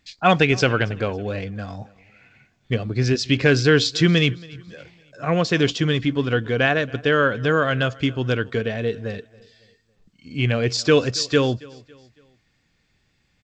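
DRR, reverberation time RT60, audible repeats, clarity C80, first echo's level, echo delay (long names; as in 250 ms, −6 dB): no reverb audible, no reverb audible, 2, no reverb audible, −23.0 dB, 277 ms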